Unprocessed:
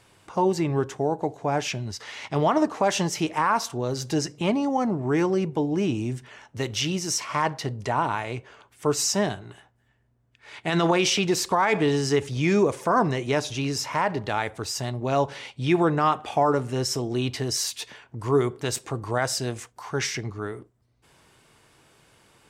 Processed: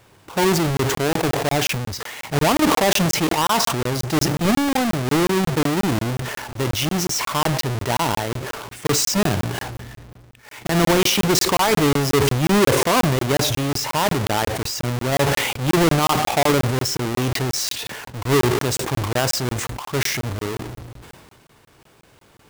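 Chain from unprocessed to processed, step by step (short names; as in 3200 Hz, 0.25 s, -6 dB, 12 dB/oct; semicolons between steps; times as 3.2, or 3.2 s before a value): half-waves squared off; crackling interface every 0.18 s, samples 1024, zero, from 0.77; sustainer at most 29 dB/s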